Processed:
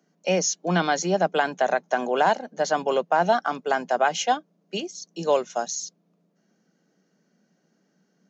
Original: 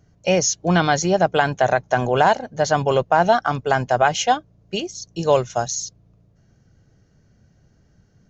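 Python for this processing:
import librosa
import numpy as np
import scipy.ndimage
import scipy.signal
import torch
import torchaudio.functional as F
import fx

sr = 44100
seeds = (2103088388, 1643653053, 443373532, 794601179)

y = scipy.signal.sosfilt(scipy.signal.butter(12, 170.0, 'highpass', fs=sr, output='sos'), x)
y = F.gain(torch.from_numpy(y), -4.5).numpy()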